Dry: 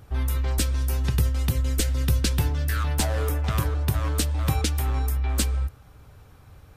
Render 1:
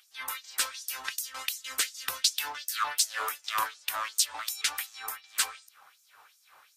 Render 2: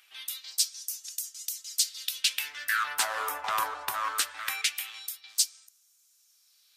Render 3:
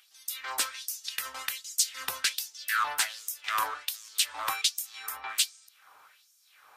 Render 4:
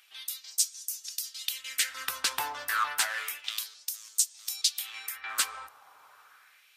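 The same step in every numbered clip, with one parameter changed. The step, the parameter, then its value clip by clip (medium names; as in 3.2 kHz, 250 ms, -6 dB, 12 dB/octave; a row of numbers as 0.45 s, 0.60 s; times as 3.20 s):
LFO high-pass, rate: 2.7 Hz, 0.21 Hz, 1.3 Hz, 0.3 Hz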